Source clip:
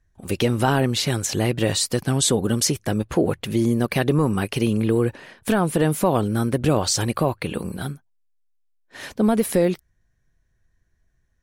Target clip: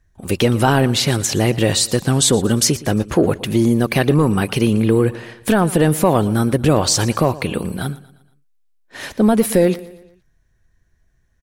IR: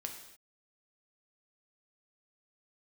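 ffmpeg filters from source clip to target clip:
-af "aecho=1:1:117|234|351|468:0.112|0.0527|0.0248|0.0116,acontrast=39"

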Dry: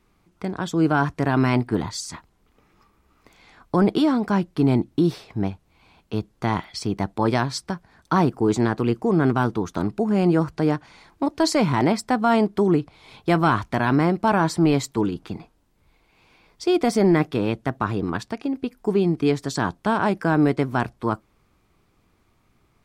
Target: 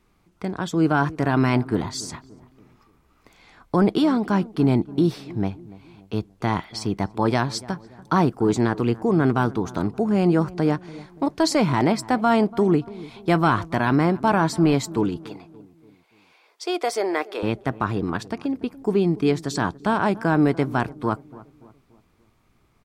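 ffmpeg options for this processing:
ffmpeg -i in.wav -filter_complex "[0:a]asettb=1/sr,asplit=3[link_01][link_02][link_03];[link_01]atrim=end=15.194[link_04];[link_02]atrim=start=15.19:end=17.43,asetpts=PTS-STARTPTS,afade=type=in:duration=0.004:curve=qsin,afade=type=out:start_time=2.236:duration=0.004:curve=qsin,highpass=frequency=430:width=0.5412,highpass=frequency=430:width=1.3066[link_05];[link_03]atrim=start=17.426[link_06];[link_04][link_05]acrossfade=duration=0.004:curve1=hsin:curve2=qsin[link_07];[link_07][link_06]acrossfade=duration=0.004:curve1=qsin:curve2=hsin,asplit=2[link_08][link_09];[link_09]adelay=288,lowpass=frequency=1100:poles=1,volume=-18.5dB,asplit=2[link_10][link_11];[link_11]adelay=288,lowpass=frequency=1100:poles=1,volume=0.48,asplit=2[link_12][link_13];[link_13]adelay=288,lowpass=frequency=1100:poles=1,volume=0.48,asplit=2[link_14][link_15];[link_15]adelay=288,lowpass=frequency=1100:poles=1,volume=0.48[link_16];[link_08][link_10][link_12][link_14][link_16]amix=inputs=5:normalize=0" out.wav

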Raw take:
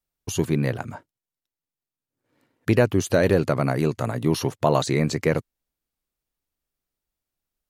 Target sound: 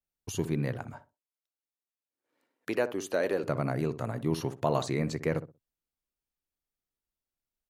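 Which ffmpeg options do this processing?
ffmpeg -i in.wav -filter_complex "[0:a]asettb=1/sr,asplit=3[link_01][link_02][link_03];[link_01]atrim=end=0.944[link_04];[link_02]atrim=start=0.94:end=3.44,asetpts=PTS-STARTPTS,afade=type=in:duration=0.004:curve=qsin,afade=type=out:start_time=2.496:duration=0.004:curve=qsin,highpass=350[link_05];[link_03]atrim=start=3.436[link_06];[link_04][link_05]acrossfade=duration=0.004:curve1=hsin:curve2=qsin[link_07];[link_07][link_06]acrossfade=duration=0.004:curve1=qsin:curve2=hsin,asplit=2[link_08][link_09];[link_09]adelay=62,lowpass=frequency=880:poles=1,volume=-11dB,asplit=2[link_10][link_11];[link_11]adelay=62,lowpass=frequency=880:poles=1,volume=0.24,asplit=2[link_12][link_13];[link_13]adelay=62,lowpass=frequency=880:poles=1,volume=0.24[link_14];[link_08][link_10][link_12][link_14]amix=inputs=4:normalize=0,adynamicequalizer=threshold=0.01:dfrequency=2400:dqfactor=0.7:tfrequency=2400:tqfactor=0.7:attack=5:release=100:ratio=0.375:range=2:mode=cutabove:tftype=highshelf,volume=-8dB" out.wav

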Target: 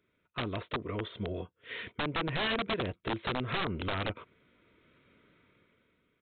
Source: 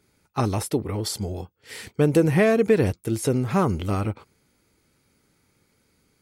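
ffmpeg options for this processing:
ffmpeg -i in.wav -af "asuperstop=centerf=820:order=8:qfactor=4.9,dynaudnorm=framelen=200:gausssize=11:maxgain=16dB,lowshelf=frequency=190:gain=-9,acompressor=threshold=-23dB:ratio=4,aresample=8000,aeval=exprs='(mod(9.44*val(0)+1,2)-1)/9.44':channel_layout=same,aresample=44100,volume=-6.5dB" out.wav

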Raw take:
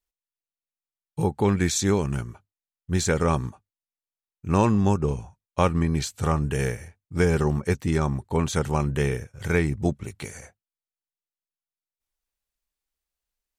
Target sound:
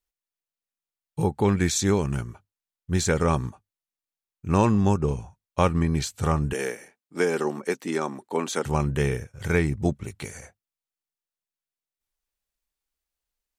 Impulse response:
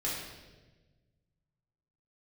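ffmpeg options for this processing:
-filter_complex "[0:a]asettb=1/sr,asplit=3[link_01][link_02][link_03];[link_01]atrim=end=6.534[link_04];[link_02]atrim=start=6.53:end=8.65,asetpts=PTS-STARTPTS,afade=type=in:duration=0.004:curve=qsin,afade=type=out:start_time=2.116:duration=0.004:curve=qsin,highpass=frequency=240:width=0.5412,highpass=frequency=240:width=1.3066[link_05];[link_03]atrim=start=8.646[link_06];[link_04][link_05]acrossfade=duration=0.004:curve1=hsin:curve2=qsin[link_07];[link_07][link_06]acrossfade=duration=0.004:curve1=qsin:curve2=hsin"

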